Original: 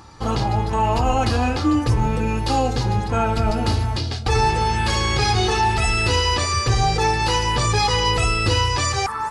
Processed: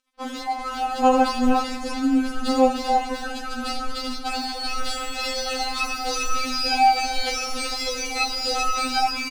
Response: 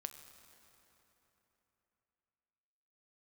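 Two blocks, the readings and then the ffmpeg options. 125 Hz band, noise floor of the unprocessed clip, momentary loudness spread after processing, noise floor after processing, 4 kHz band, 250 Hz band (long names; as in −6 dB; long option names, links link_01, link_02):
below −30 dB, −26 dBFS, 10 LU, −33 dBFS, −3.0 dB, −0.5 dB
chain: -filter_complex "[0:a]asplit=5[link_01][link_02][link_03][link_04][link_05];[link_02]adelay=386,afreqshift=-32,volume=-4dB[link_06];[link_03]adelay=772,afreqshift=-64,volume=-13.4dB[link_07];[link_04]adelay=1158,afreqshift=-96,volume=-22.7dB[link_08];[link_05]adelay=1544,afreqshift=-128,volume=-32.1dB[link_09];[link_01][link_06][link_07][link_08][link_09]amix=inputs=5:normalize=0,aeval=exprs='sgn(val(0))*max(abs(val(0))-0.0158,0)':channel_layout=same,afftfilt=real='re*3.46*eq(mod(b,12),0)':imag='im*3.46*eq(mod(b,12),0)':win_size=2048:overlap=0.75"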